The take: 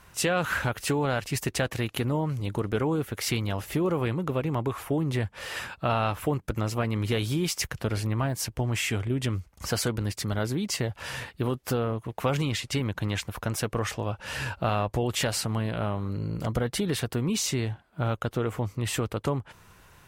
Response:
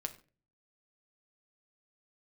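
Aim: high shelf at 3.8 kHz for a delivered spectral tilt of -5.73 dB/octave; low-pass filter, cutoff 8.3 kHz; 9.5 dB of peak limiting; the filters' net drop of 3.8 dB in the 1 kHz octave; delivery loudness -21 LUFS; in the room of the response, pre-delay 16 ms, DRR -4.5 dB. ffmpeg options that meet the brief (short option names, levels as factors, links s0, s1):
-filter_complex "[0:a]lowpass=8300,equalizer=f=1000:t=o:g=-4.5,highshelf=f=3800:g=-8,alimiter=level_in=1.12:limit=0.0631:level=0:latency=1,volume=0.891,asplit=2[s0][s1];[1:a]atrim=start_sample=2205,adelay=16[s2];[s1][s2]afir=irnorm=-1:irlink=0,volume=1.88[s3];[s0][s3]amix=inputs=2:normalize=0,volume=2.24"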